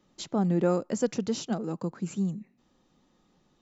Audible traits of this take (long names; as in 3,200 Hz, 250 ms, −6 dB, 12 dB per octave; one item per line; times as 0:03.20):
background noise floor −69 dBFS
spectral slope −7.0 dB per octave